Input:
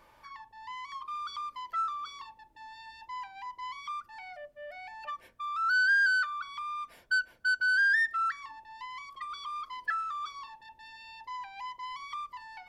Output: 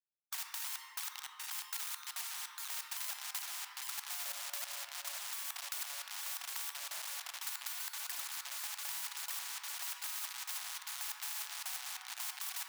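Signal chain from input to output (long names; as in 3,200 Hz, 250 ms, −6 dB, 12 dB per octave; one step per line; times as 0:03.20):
source passing by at 0:03.36, 15 m/s, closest 9.4 metres
camcorder AGC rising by 33 dB per second
Butterworth low-pass 1,800 Hz 48 dB per octave
gate pattern "...x.xx..x." 139 BPM −60 dB
noise gate with hold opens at −55 dBFS
feedback echo with a long and a short gap by turns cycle 851 ms, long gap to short 1.5 to 1, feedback 75%, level −20.5 dB
in parallel at +1 dB: downward compressor 10 to 1, threshold −55 dBFS, peak gain reduction 18.5 dB
on the sum: log-companded quantiser 4 bits
elliptic high-pass filter 920 Hz, stop band 70 dB
on a send at −10 dB: convolution reverb RT60 1.6 s, pre-delay 6 ms
on the sum: every bin compressed towards the loudest bin 10 to 1
level +9 dB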